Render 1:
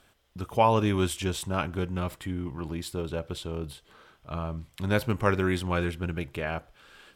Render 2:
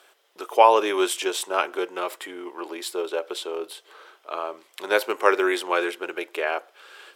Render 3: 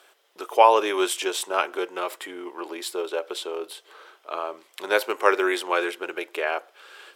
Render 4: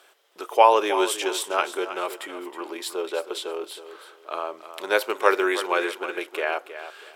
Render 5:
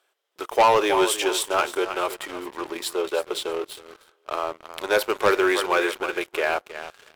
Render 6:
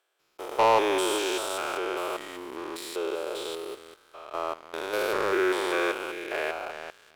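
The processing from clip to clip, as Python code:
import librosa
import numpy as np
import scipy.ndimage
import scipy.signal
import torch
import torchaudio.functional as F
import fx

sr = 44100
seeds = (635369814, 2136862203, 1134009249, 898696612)

y1 = scipy.signal.sosfilt(scipy.signal.ellip(4, 1.0, 80, 370.0, 'highpass', fs=sr, output='sos'), x)
y1 = y1 * librosa.db_to_amplitude(7.5)
y2 = fx.dynamic_eq(y1, sr, hz=180.0, q=0.73, threshold_db=-35.0, ratio=4.0, max_db=-3)
y3 = fx.echo_feedback(y2, sr, ms=318, feedback_pct=25, wet_db=-12)
y4 = fx.leveller(y3, sr, passes=3)
y4 = y4 * librosa.db_to_amplitude(-8.0)
y5 = fx.spec_steps(y4, sr, hold_ms=200)
y5 = y5 * librosa.db_to_amplitude(-2.0)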